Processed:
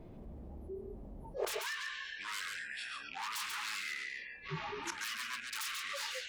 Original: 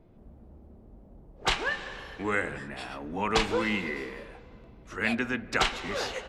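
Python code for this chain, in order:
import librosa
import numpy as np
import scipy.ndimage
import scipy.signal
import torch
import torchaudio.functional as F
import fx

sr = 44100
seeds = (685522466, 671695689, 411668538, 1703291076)

p1 = fx.rattle_buzz(x, sr, strikes_db=-38.0, level_db=-33.0)
p2 = fx.peak_eq(p1, sr, hz=1400.0, db=-5.5, octaves=0.26)
p3 = 10.0 ** (-29.0 / 20.0) * (np.abs((p2 / 10.0 ** (-29.0 / 20.0) + 3.0) % 4.0 - 2.0) - 1.0)
p4 = fx.gate_flip(p3, sr, shuts_db=-38.0, range_db=-26)
p5 = fx.ring_mod(p4, sr, carrier_hz=fx.line((4.47, 95.0), (4.99, 390.0)), at=(4.47, 4.99), fade=0.02)
p6 = p5 + fx.echo_single(p5, sr, ms=138, db=-6.5, dry=0)
p7 = fx.noise_reduce_blind(p6, sr, reduce_db=28)
p8 = fx.env_flatten(p7, sr, amount_pct=50)
y = p8 * 10.0 ** (15.0 / 20.0)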